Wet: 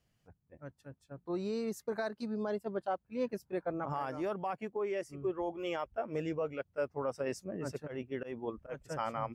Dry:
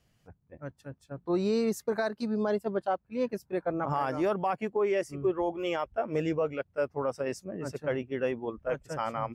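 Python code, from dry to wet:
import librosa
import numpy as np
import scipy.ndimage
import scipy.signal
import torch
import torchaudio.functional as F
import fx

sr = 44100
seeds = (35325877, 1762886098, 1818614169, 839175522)

y = fx.rider(x, sr, range_db=4, speed_s=0.5)
y = fx.auto_swell(y, sr, attack_ms=139.0, at=(7.86, 8.83), fade=0.02)
y = y * 10.0 ** (-6.0 / 20.0)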